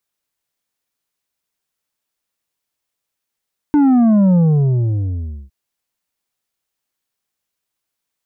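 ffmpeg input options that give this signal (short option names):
-f lavfi -i "aevalsrc='0.335*clip((1.76-t)/1.16,0,1)*tanh(2.11*sin(2*PI*300*1.76/log(65/300)*(exp(log(65/300)*t/1.76)-1)))/tanh(2.11)':d=1.76:s=44100"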